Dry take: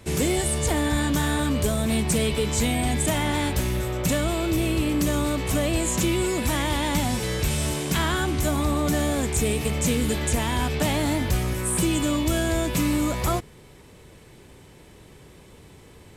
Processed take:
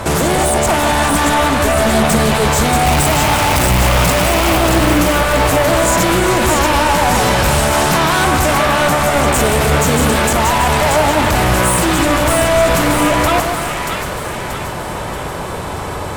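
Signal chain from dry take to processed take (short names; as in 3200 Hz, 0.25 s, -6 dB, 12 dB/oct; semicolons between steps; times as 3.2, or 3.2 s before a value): 2.85–4.58 infinite clipping; band shelf 940 Hz +11 dB; limiter -22.5 dBFS, peak gain reduction 16.5 dB; sine folder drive 11 dB, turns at -17.5 dBFS; split-band echo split 1200 Hz, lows 0.144 s, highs 0.632 s, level -4 dB; gain +6 dB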